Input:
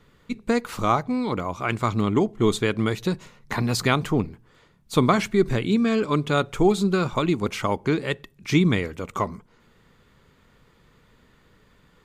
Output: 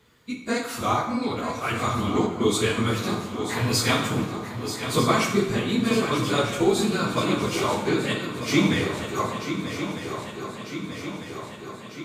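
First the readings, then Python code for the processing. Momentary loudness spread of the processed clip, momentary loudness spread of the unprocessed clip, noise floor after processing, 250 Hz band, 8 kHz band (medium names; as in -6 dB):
12 LU, 9 LU, -40 dBFS, -1.5 dB, +6.5 dB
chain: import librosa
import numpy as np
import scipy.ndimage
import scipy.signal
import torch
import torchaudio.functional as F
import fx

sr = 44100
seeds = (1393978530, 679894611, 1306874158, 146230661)

y = fx.phase_scramble(x, sr, seeds[0], window_ms=50)
y = scipy.signal.sosfilt(scipy.signal.butter(2, 72.0, 'highpass', fs=sr, output='sos'), y)
y = fx.high_shelf(y, sr, hz=2800.0, db=9.0)
y = fx.echo_swing(y, sr, ms=1248, ratio=3, feedback_pct=63, wet_db=-10.0)
y = fx.rev_plate(y, sr, seeds[1], rt60_s=0.95, hf_ratio=0.75, predelay_ms=0, drr_db=1.5)
y = F.gain(torch.from_numpy(y), -4.5).numpy()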